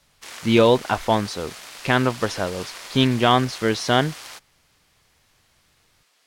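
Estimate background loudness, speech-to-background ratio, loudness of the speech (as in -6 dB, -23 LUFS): -37.0 LUFS, 16.0 dB, -21.0 LUFS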